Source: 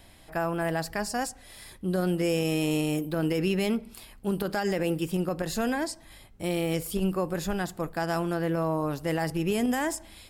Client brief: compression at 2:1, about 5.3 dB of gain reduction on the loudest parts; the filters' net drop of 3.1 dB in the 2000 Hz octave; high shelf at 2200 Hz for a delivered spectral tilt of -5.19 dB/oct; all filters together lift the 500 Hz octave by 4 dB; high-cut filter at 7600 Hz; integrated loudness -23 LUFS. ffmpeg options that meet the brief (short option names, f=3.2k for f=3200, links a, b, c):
-af "lowpass=7.6k,equalizer=f=500:t=o:g=5,equalizer=f=2k:t=o:g=-8.5,highshelf=f=2.2k:g=7,acompressor=threshold=-30dB:ratio=2,volume=8.5dB"